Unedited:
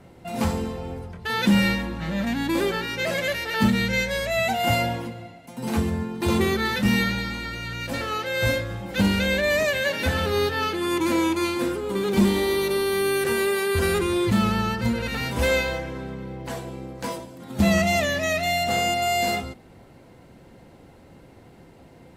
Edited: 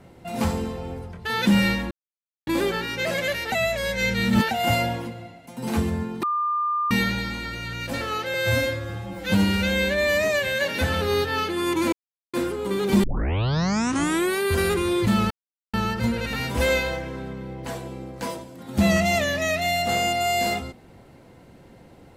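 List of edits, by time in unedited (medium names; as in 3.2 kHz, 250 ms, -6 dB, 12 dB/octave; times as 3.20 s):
1.91–2.47 s: mute
3.52–4.51 s: reverse
6.23–6.91 s: bleep 1.2 kHz -21 dBFS
8.34–9.85 s: stretch 1.5×
11.17–11.58 s: mute
12.28 s: tape start 1.34 s
14.55 s: insert silence 0.43 s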